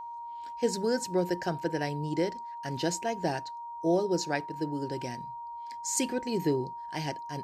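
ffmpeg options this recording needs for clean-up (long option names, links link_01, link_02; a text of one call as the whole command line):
ffmpeg -i in.wav -af "bandreject=frequency=940:width=30" out.wav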